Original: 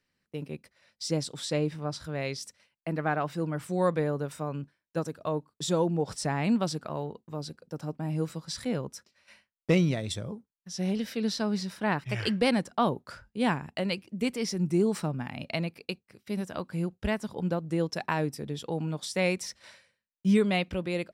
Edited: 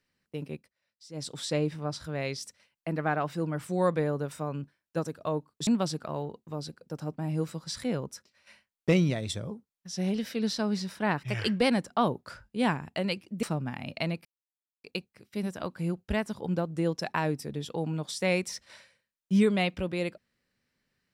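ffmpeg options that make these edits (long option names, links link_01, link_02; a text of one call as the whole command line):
ffmpeg -i in.wav -filter_complex "[0:a]asplit=6[link_01][link_02][link_03][link_04][link_05][link_06];[link_01]atrim=end=0.69,asetpts=PTS-STARTPTS,afade=type=out:start_time=0.54:duration=0.15:silence=0.141254[link_07];[link_02]atrim=start=0.69:end=1.13,asetpts=PTS-STARTPTS,volume=-17dB[link_08];[link_03]atrim=start=1.13:end=5.672,asetpts=PTS-STARTPTS,afade=type=in:duration=0.15:silence=0.141254[link_09];[link_04]atrim=start=6.478:end=14.242[link_10];[link_05]atrim=start=14.958:end=15.78,asetpts=PTS-STARTPTS,afade=type=out:start_time=0.818:duration=0.004:curve=hsin,apad=pad_dur=0.59[link_11];[link_06]atrim=start=15.78,asetpts=PTS-STARTPTS,afade=type=in:duration=0.004:curve=hsin[link_12];[link_07][link_08][link_09]concat=n=3:v=0:a=1[link_13];[link_13][link_10]acrossfade=duration=0.004:curve1=hsin:curve2=hsin[link_14];[link_11][link_12]concat=n=2:v=0:a=1[link_15];[link_14][link_15]acrossfade=duration=0.004:curve1=hsin:curve2=hsin" out.wav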